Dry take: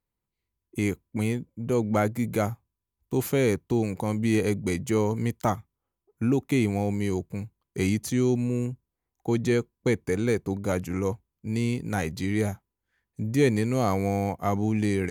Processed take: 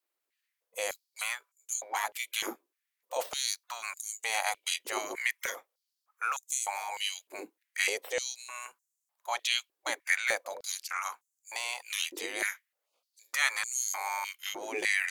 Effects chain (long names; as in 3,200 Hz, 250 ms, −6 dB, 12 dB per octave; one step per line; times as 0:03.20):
gate on every frequency bin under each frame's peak −20 dB weak
high-pass on a step sequencer 3.3 Hz 340–7,000 Hz
level +5 dB